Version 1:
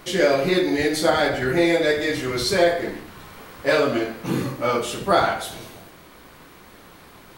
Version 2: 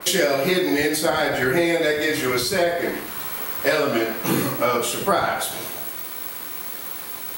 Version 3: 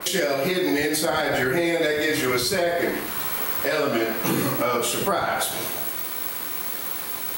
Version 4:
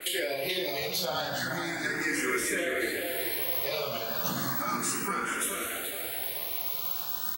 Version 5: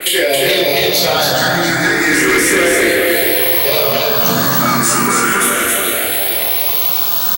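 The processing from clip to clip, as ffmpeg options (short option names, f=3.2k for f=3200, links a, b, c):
-filter_complex "[0:a]aemphasis=mode=production:type=bsi,acrossover=split=190[a][b];[b]acompressor=threshold=-25dB:ratio=6[c];[a][c]amix=inputs=2:normalize=0,adynamicequalizer=threshold=0.00562:dfrequency=3100:dqfactor=0.7:tfrequency=3100:tqfactor=0.7:attack=5:release=100:ratio=0.375:range=3.5:mode=cutabove:tftype=highshelf,volume=8dB"
-af "alimiter=limit=-15.5dB:level=0:latency=1:release=183,volume=2.5dB"
-filter_complex "[0:a]acrossover=split=860|1300[a][b][c];[c]acontrast=58[d];[a][b][d]amix=inputs=3:normalize=0,asplit=2[e][f];[f]adelay=430,lowpass=f=4.5k:p=1,volume=-5dB,asplit=2[g][h];[h]adelay=430,lowpass=f=4.5k:p=1,volume=0.55,asplit=2[i][j];[j]adelay=430,lowpass=f=4.5k:p=1,volume=0.55,asplit=2[k][l];[l]adelay=430,lowpass=f=4.5k:p=1,volume=0.55,asplit=2[m][n];[n]adelay=430,lowpass=f=4.5k:p=1,volume=0.55,asplit=2[o][p];[p]adelay=430,lowpass=f=4.5k:p=1,volume=0.55,asplit=2[q][r];[r]adelay=430,lowpass=f=4.5k:p=1,volume=0.55[s];[e][g][i][k][m][o][q][s]amix=inputs=8:normalize=0,asplit=2[t][u];[u]afreqshift=0.34[v];[t][v]amix=inputs=2:normalize=1,volume=-8.5dB"
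-filter_complex "[0:a]asplit=2[a][b];[b]adelay=29,volume=-6.5dB[c];[a][c]amix=inputs=2:normalize=0,aecho=1:1:273:0.708,aeval=exprs='0.2*sin(PI/2*2*val(0)/0.2)':c=same,volume=7dB"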